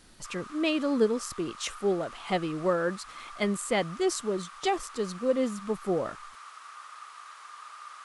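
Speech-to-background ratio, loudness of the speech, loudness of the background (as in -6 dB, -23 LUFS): 16.0 dB, -30.0 LUFS, -46.0 LUFS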